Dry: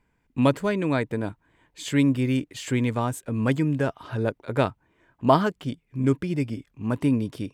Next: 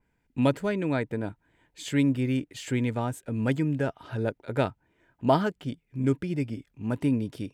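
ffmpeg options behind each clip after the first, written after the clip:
-af "bandreject=f=1.1k:w=5.6,adynamicequalizer=threshold=0.00708:dfrequency=3100:dqfactor=0.7:tfrequency=3100:tqfactor=0.7:attack=5:release=100:ratio=0.375:range=2.5:mode=cutabove:tftype=highshelf,volume=-3dB"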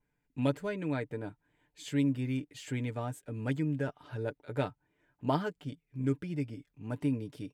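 -af "aecho=1:1:6.8:0.46,volume=-8dB"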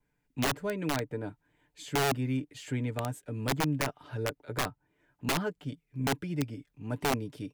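-filter_complex "[0:a]acrossover=split=310|1200|1500[a][b][c][d];[d]alimiter=level_in=15dB:limit=-24dB:level=0:latency=1:release=394,volume=-15dB[e];[a][b][c][e]amix=inputs=4:normalize=0,aeval=exprs='(mod(16.8*val(0)+1,2)-1)/16.8':c=same,volume=2.5dB"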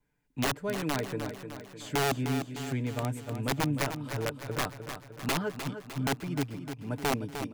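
-af "aecho=1:1:304|608|912|1216|1520|1824:0.355|0.192|0.103|0.0559|0.0302|0.0163"

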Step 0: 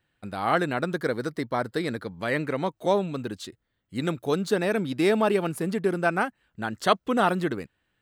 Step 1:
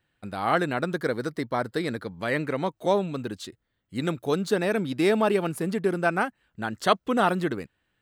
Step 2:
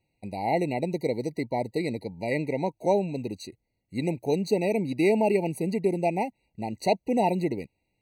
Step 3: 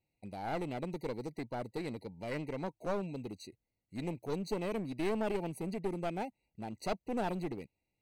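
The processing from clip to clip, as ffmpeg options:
-af anull
-af "afftfilt=real='re*eq(mod(floor(b*sr/1024/960),2),0)':imag='im*eq(mod(floor(b*sr/1024/960),2),0)':win_size=1024:overlap=0.75"
-af "aeval=exprs='clip(val(0),-1,0.0398)':c=same,volume=-9dB"

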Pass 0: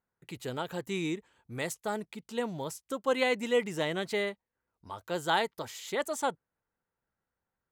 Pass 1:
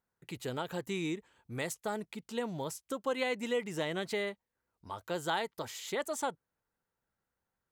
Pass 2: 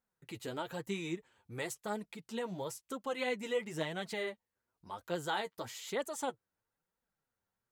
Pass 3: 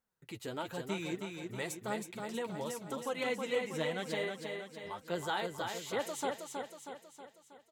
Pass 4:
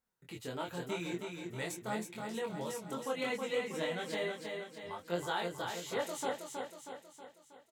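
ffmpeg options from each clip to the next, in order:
-af "acompressor=threshold=-33dB:ratio=2"
-af "flanger=delay=3.6:depth=7.6:regen=22:speed=1:shape=triangular,volume=1dB"
-af "aecho=1:1:319|638|957|1276|1595|1914|2233:0.562|0.292|0.152|0.0791|0.0411|0.0214|0.0111"
-filter_complex "[0:a]asplit=2[a][b];[b]adelay=23,volume=-2dB[c];[a][c]amix=inputs=2:normalize=0,volume=-2.5dB"

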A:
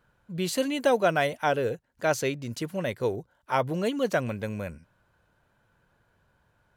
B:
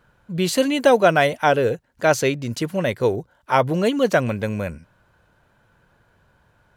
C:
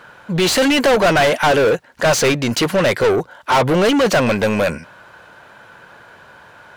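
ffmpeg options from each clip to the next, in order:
-af "highshelf=f=8.8k:g=-3.5,volume=8dB"
-filter_complex "[0:a]asplit=2[a][b];[b]highpass=f=720:p=1,volume=32dB,asoftclip=type=tanh:threshold=-2dB[c];[a][c]amix=inputs=2:normalize=0,lowpass=f=4.2k:p=1,volume=-6dB,volume=-4.5dB"

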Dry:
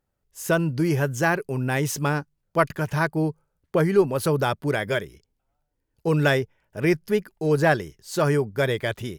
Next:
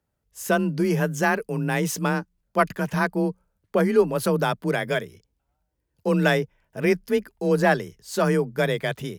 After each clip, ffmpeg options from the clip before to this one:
-af "afreqshift=27"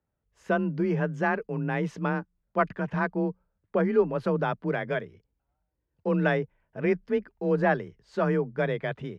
-af "lowpass=2.2k,volume=-4dB"

